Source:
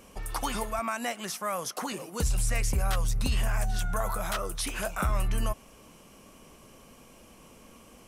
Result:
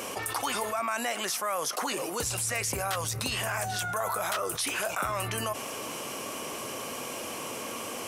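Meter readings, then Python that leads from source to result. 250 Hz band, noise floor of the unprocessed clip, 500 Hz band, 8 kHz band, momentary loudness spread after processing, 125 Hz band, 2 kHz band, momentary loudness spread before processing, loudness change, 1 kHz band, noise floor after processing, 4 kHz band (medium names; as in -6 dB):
-1.5 dB, -54 dBFS, +3.0 dB, +4.5 dB, 6 LU, -6.5 dB, +4.0 dB, 5 LU, 0.0 dB, +3.0 dB, -38 dBFS, +5.0 dB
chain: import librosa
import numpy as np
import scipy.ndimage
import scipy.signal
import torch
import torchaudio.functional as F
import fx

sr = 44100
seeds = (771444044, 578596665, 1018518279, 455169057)

y = scipy.signal.sosfilt(scipy.signal.butter(4, 120.0, 'highpass', fs=sr, output='sos'), x)
y = fx.peak_eq(y, sr, hz=180.0, db=-13.5, octaves=0.99)
y = fx.env_flatten(y, sr, amount_pct=70)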